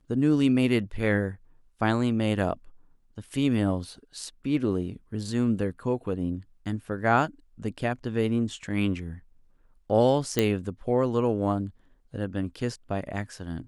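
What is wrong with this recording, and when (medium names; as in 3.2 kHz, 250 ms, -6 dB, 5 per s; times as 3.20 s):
10.39 s: pop -8 dBFS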